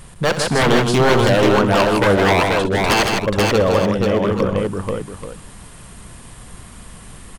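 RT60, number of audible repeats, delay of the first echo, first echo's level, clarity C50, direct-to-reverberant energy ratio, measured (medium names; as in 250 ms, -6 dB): no reverb, 5, 63 ms, -12.5 dB, no reverb, no reverb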